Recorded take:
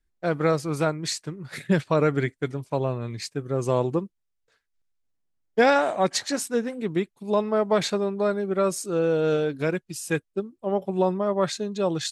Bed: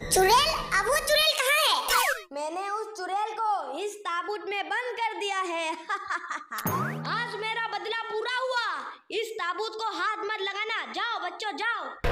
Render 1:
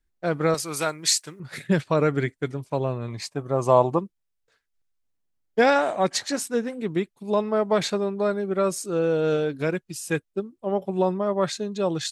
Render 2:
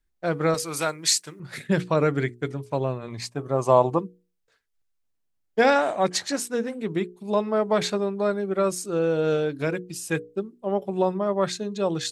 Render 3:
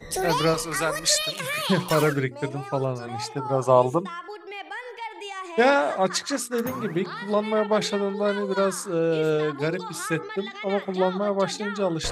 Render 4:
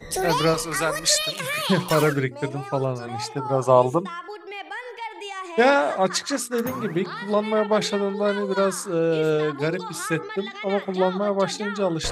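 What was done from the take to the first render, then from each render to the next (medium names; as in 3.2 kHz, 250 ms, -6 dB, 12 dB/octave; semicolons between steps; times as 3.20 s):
0.54–1.40 s: tilt EQ +3.5 dB/octave; 3.08–3.99 s: high-order bell 820 Hz +10 dB 1.2 oct
hum notches 60/120/180/240/300/360/420/480 Hz
add bed -6 dB
trim +1.5 dB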